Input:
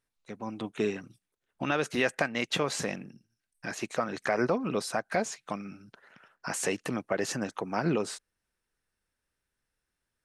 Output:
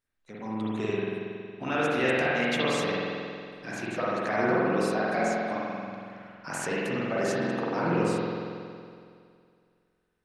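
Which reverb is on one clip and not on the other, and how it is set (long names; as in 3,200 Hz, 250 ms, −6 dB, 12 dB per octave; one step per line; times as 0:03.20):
spring reverb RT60 2.3 s, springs 46 ms, chirp 35 ms, DRR −7.5 dB
level −4.5 dB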